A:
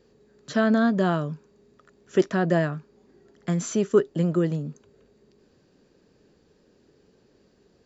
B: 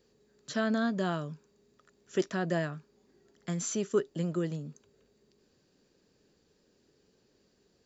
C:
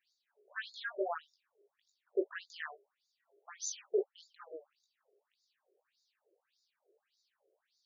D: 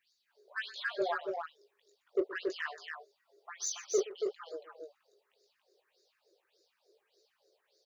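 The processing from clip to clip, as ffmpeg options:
ffmpeg -i in.wav -af "highshelf=frequency=2900:gain=9.5,volume=-9dB" out.wav
ffmpeg -i in.wav -af "flanger=delay=17.5:depth=2.8:speed=1.8,aeval=exprs='0.112*(cos(1*acos(clip(val(0)/0.112,-1,1)))-cos(1*PI/2))+0.00501*(cos(6*acos(clip(val(0)/0.112,-1,1)))-cos(6*PI/2))':channel_layout=same,afftfilt=real='re*between(b*sr/1024,480*pow(5100/480,0.5+0.5*sin(2*PI*1.7*pts/sr))/1.41,480*pow(5100/480,0.5+0.5*sin(2*PI*1.7*pts/sr))*1.41)':imag='im*between(b*sr/1024,480*pow(5100/480,0.5+0.5*sin(2*PI*1.7*pts/sr))/1.41,480*pow(5100/480,0.5+0.5*sin(2*PI*1.7*pts/sr))*1.41)':win_size=1024:overlap=0.75,volume=2.5dB" out.wav
ffmpeg -i in.wav -filter_complex "[0:a]asplit=2[link_01][link_02];[link_02]asoftclip=type=tanh:threshold=-36dB,volume=-3.5dB[link_03];[link_01][link_03]amix=inputs=2:normalize=0,aecho=1:1:123|279:0.141|0.596" out.wav

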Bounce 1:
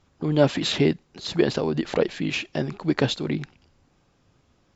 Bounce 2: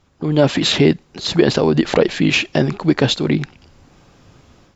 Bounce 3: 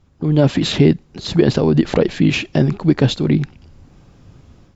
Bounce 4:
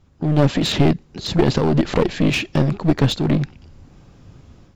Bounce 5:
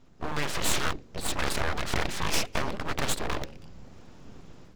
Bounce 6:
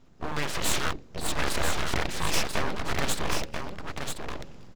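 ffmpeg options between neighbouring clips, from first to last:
ffmpeg -i in.wav -af "dynaudnorm=framelen=290:gausssize=3:maxgain=10.5dB,alimiter=level_in=5.5dB:limit=-1dB:release=50:level=0:latency=1,volume=-1dB" out.wav
ffmpeg -i in.wav -af "lowshelf=frequency=290:gain=11.5,volume=-5dB" out.wav
ffmpeg -i in.wav -af "aeval=exprs='clip(val(0),-1,0.133)':channel_layout=same" out.wav
ffmpeg -i in.wav -af "afftfilt=real='re*lt(hypot(re,im),0.501)':imag='im*lt(hypot(re,im),0.501)':win_size=1024:overlap=0.75,aeval=exprs='abs(val(0))':channel_layout=same,bandreject=frequency=45.94:width_type=h:width=4,bandreject=frequency=91.88:width_type=h:width=4,bandreject=frequency=137.82:width_type=h:width=4,bandreject=frequency=183.76:width_type=h:width=4,bandreject=frequency=229.7:width_type=h:width=4,bandreject=frequency=275.64:width_type=h:width=4,bandreject=frequency=321.58:width_type=h:width=4,bandreject=frequency=367.52:width_type=h:width=4,bandreject=frequency=413.46:width_type=h:width=4,bandreject=frequency=459.4:width_type=h:width=4,bandreject=frequency=505.34:width_type=h:width=4,bandreject=frequency=551.28:width_type=h:width=4" out.wav
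ffmpeg -i in.wav -af "aecho=1:1:988:0.531" out.wav

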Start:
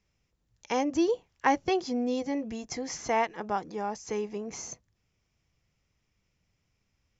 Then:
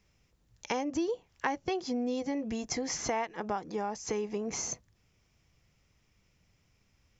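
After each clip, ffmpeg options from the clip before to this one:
ffmpeg -i in.wav -af "acompressor=threshold=-37dB:ratio=4,volume=6dB" out.wav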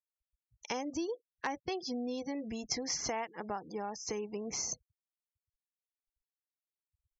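ffmpeg -i in.wav -af "aeval=exprs='0.211*(cos(1*acos(clip(val(0)/0.211,-1,1)))-cos(1*PI/2))+0.0335*(cos(4*acos(clip(val(0)/0.211,-1,1)))-cos(4*PI/2))+0.0335*(cos(6*acos(clip(val(0)/0.211,-1,1)))-cos(6*PI/2))+0.0106*(cos(8*acos(clip(val(0)/0.211,-1,1)))-cos(8*PI/2))':channel_layout=same,afftfilt=real='re*gte(hypot(re,im),0.00562)':imag='im*gte(hypot(re,im),0.00562)':win_size=1024:overlap=0.75,lowpass=frequency=5400:width_type=q:width=2.4,volume=-5dB" out.wav

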